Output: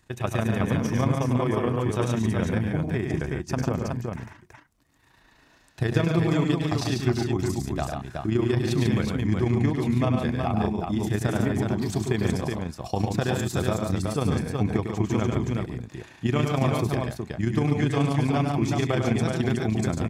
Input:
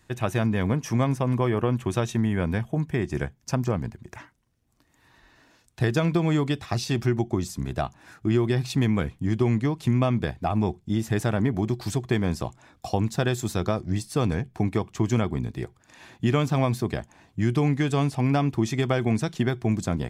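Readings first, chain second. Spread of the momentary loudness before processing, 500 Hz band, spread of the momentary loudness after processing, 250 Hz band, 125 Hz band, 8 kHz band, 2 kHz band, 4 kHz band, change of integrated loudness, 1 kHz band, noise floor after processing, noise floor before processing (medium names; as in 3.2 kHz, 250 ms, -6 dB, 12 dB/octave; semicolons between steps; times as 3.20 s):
7 LU, +0.5 dB, 6 LU, +0.5 dB, 0.0 dB, 0.0 dB, +0.5 dB, +0.5 dB, 0.0 dB, +0.5 dB, -58 dBFS, -64 dBFS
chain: AM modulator 28 Hz, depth 40%; multi-tap echo 100/143/371 ms -6/-5/-4 dB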